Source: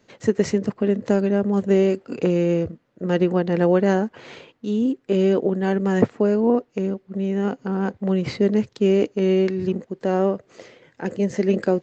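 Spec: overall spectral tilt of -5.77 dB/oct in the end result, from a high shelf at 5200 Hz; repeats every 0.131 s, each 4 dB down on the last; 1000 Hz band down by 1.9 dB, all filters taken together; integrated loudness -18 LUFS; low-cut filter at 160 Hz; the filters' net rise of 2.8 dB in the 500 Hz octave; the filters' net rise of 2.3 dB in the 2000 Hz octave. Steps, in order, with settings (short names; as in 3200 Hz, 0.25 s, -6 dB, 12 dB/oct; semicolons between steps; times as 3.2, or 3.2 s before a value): HPF 160 Hz; bell 500 Hz +5 dB; bell 1000 Hz -6.5 dB; bell 2000 Hz +3.5 dB; high shelf 5200 Hz +9 dB; feedback echo 0.131 s, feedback 63%, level -4 dB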